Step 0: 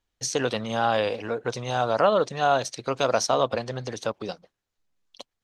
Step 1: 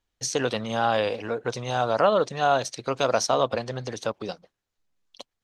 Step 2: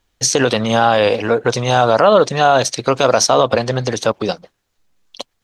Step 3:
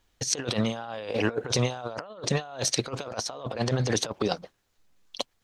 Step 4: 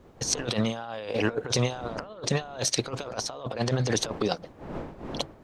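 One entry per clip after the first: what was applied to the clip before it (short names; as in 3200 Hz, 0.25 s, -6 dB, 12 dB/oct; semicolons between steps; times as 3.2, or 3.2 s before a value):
nothing audible
maximiser +14.5 dB; gain -1 dB
negative-ratio compressor -20 dBFS, ratio -0.5; gain -8.5 dB
wind noise 520 Hz -44 dBFS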